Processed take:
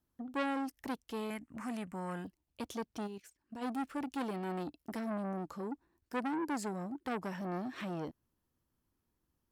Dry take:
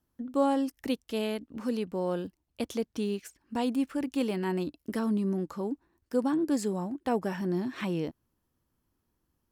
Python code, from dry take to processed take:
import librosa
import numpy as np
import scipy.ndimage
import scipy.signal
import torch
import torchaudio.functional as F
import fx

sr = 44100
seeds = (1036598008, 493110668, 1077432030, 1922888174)

y = fx.graphic_eq(x, sr, hz=(125, 500, 1000, 2000, 4000, 8000), db=(4, -11, 6, 12, -11, 11), at=(1.3, 2.25))
y = fx.level_steps(y, sr, step_db=13, at=(3.06, 3.61), fade=0.02)
y = fx.transformer_sat(y, sr, knee_hz=1600.0)
y = y * librosa.db_to_amplitude(-4.5)